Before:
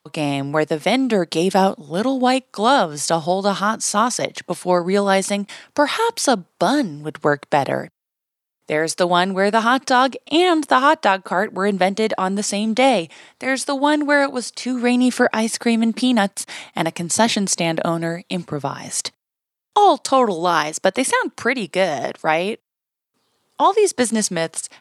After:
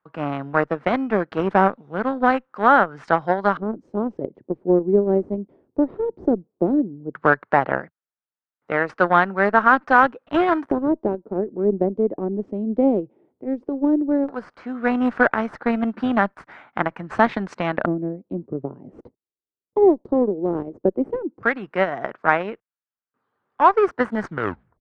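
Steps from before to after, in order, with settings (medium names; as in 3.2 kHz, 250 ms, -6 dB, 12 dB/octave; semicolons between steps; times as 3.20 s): tape stop on the ending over 0.55 s; in parallel at -9 dB: decimation with a swept rate 9×, swing 160% 0.21 Hz; on the sum: Chebyshev shaper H 7 -22 dB, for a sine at 1 dBFS; LFO low-pass square 0.14 Hz 380–1500 Hz; trim -4.5 dB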